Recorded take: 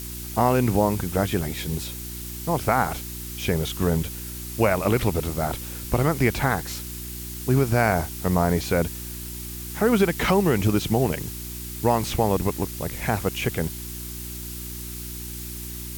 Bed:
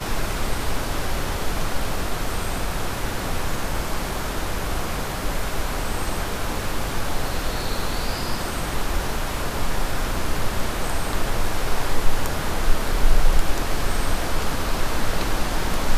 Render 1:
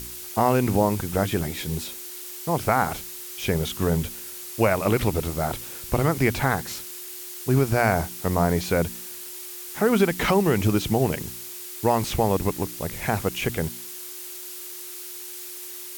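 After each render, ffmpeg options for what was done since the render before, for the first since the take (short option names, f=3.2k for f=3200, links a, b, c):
-af "bandreject=f=60:t=h:w=4,bandreject=f=120:t=h:w=4,bandreject=f=180:t=h:w=4,bandreject=f=240:t=h:w=4,bandreject=f=300:t=h:w=4"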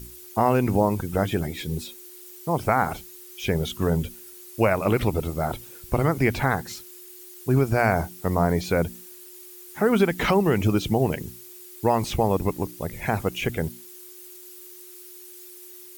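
-af "afftdn=nr=11:nf=-38"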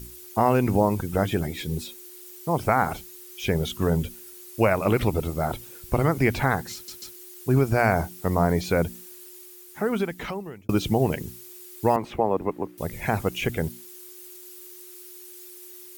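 -filter_complex "[0:a]asettb=1/sr,asplit=3[a][b][c];[a]atrim=end=11.964[d];[b]atrim=start=11.96:end=12.78,asetpts=PTS-STARTPTS,afade=t=in:d=0.004:c=qsin,afade=t=out:st=0.816:d=0.004:c=qsin,acrossover=split=220 2400:gain=0.224 1 0.112[e][f][g];[e][f][g]amix=inputs=3:normalize=0[h];[c]atrim=start=12.776[i];[d][h]acrossfade=d=0.004:c1=hsin:c2=qsin[j];[j][i]acrossfade=d=0.004:c1=qsin:c2=hsin,asplit=5[k][l][m][n][o];[k]atrim=end=6.882[p];[l]atrim=start=6.738:end=6.882[q];[m]atrim=start=6.738:end=6.882[r];[n]atrim=start=7.158:end=10.69,asetpts=PTS-STARTPTS,afade=t=out:st=2.102:d=1.43[s];[o]atrim=start=10.69,asetpts=PTS-STARTPTS,afade=t=in:d=0.004:c=hsin[t];[p][q]acrossfade=d=0.004:c1=hsin:c2=hsin[u];[u][r]acrossfade=d=0.004:c1=hsin:c2=hsin[v];[s][t]concat=n=2:v=0:a=1[w];[v][w]acrossfade=d=0.004:c1=hsin:c2=hsin"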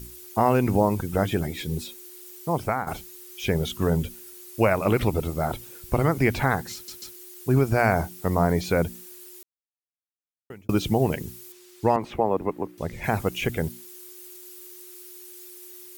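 -filter_complex "[0:a]asettb=1/sr,asplit=3[a][b][c];[a]atrim=end=11.524[d];[b]atrim=start=11.52:end=13.04,asetpts=PTS-STARTPTS,afade=t=in:d=0.004:c=qsin,afade=t=out:st=1.516:d=0.004:c=qsin,acrossover=split=7400[e][f];[f]acompressor=threshold=-56dB:ratio=4:attack=1:release=60[g];[e][g]amix=inputs=2:normalize=0[h];[c]atrim=start=13.036[i];[d][h]acrossfade=d=0.004:c1=hsin:c2=qsin[j];[j][i]acrossfade=d=0.004:c1=qsin:c2=hsin,asplit=4[k][l][m][n];[k]atrim=end=2.87,asetpts=PTS-STARTPTS,afade=t=out:st=2.36:d=0.51:c=qsin:silence=0.266073[o];[l]atrim=start=2.87:end=9.43,asetpts=PTS-STARTPTS,afade=t=in:d=0.004:c=hsin:silence=0.266073,afade=t=out:st=6.556:d=0.004:c=hsin[p];[m]atrim=start=9.43:end=10.5,asetpts=PTS-STARTPTS,volume=0[q];[n]atrim=start=10.5,asetpts=PTS-STARTPTS,afade=t=in:d=0.004:c=hsin[r];[o][p][q][r]concat=n=4:v=0:a=1"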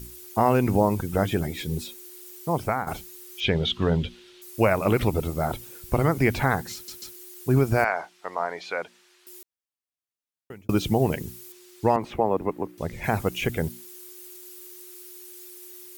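-filter_complex "[0:a]asettb=1/sr,asplit=3[a][b][c];[a]atrim=end=3.404[d];[b]atrim=start=3.4:end=4.42,asetpts=PTS-STARTPTS,afade=t=in:d=0.004:c=qsin,afade=t=out:st=1.016:d=0.004:c=qsin,lowpass=f=3.5k:t=q:w=2.7[e];[c]atrim=start=4.416[f];[d][e]acrossfade=d=0.004:c1=hsin:c2=qsin[g];[g][f]acrossfade=d=0.004:c1=qsin:c2=hsin,asettb=1/sr,asplit=3[h][i][j];[h]atrim=end=7.844[k];[i]atrim=start=7.84:end=9.27,asetpts=PTS-STARTPTS,afade=t=in:d=0.004:c=qsin,afade=t=out:st=1.426:d=0.004:c=qsin,highpass=780,lowpass=3.7k[l];[j]atrim=start=9.266[m];[k][l]acrossfade=d=0.004:c1=hsin:c2=qsin[n];[n][m]acrossfade=d=0.004:c1=qsin:c2=hsin"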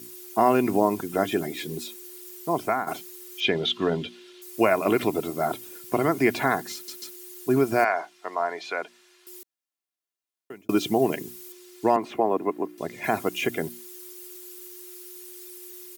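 -af "highpass=f=160:w=0.5412,highpass=f=160:w=1.3066,aecho=1:1:2.9:0.47"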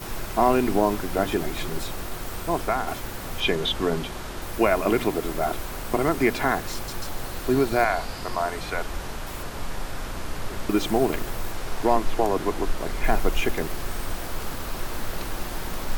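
-filter_complex "[1:a]volume=-8dB[a];[0:a][a]amix=inputs=2:normalize=0"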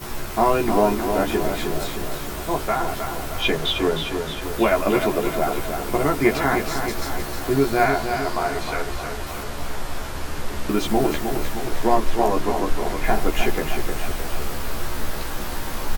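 -filter_complex "[0:a]asplit=2[a][b];[b]adelay=14,volume=-2.5dB[c];[a][c]amix=inputs=2:normalize=0,asplit=2[d][e];[e]aecho=0:1:310|620|930|1240|1550|1860|2170:0.447|0.255|0.145|0.0827|0.0472|0.0269|0.0153[f];[d][f]amix=inputs=2:normalize=0"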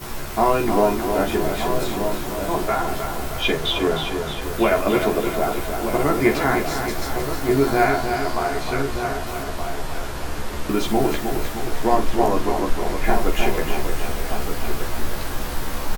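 -filter_complex "[0:a]asplit=2[a][b];[b]adelay=46,volume=-11.5dB[c];[a][c]amix=inputs=2:normalize=0,asplit=2[d][e];[e]adelay=1224,volume=-7dB,highshelf=f=4k:g=-27.6[f];[d][f]amix=inputs=2:normalize=0"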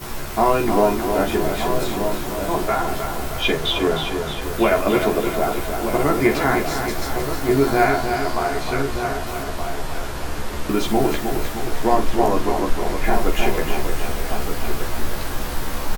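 -af "volume=1dB,alimiter=limit=-3dB:level=0:latency=1"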